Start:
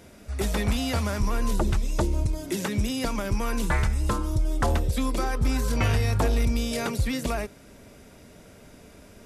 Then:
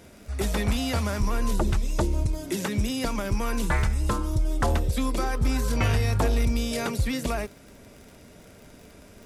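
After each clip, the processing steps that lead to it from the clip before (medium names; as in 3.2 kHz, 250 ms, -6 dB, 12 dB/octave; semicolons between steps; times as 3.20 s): crackle 50 per s -39 dBFS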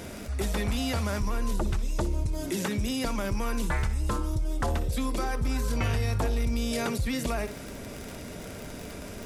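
flutter echo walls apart 10.3 m, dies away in 0.21 s; level flattener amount 50%; trim -5.5 dB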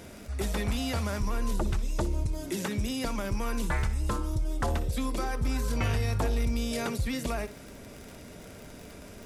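upward expansion 1.5:1, over -37 dBFS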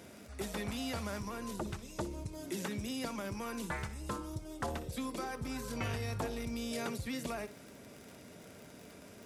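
high-pass 110 Hz 12 dB/octave; trim -6 dB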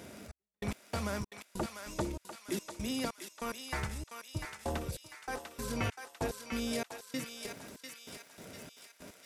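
trance gate "xxx...x.." 145 bpm -60 dB; thinning echo 696 ms, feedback 56%, high-pass 1.2 kHz, level -4 dB; trim +3.5 dB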